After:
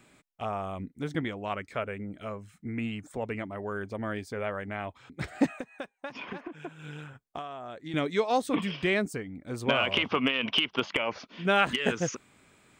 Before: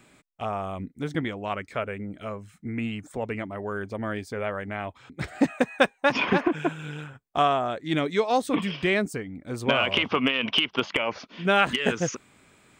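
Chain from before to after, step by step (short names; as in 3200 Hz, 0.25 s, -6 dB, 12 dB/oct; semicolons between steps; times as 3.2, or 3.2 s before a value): 5.57–7.94 compressor 12:1, threshold -33 dBFS, peak gain reduction 19.5 dB; gain -3 dB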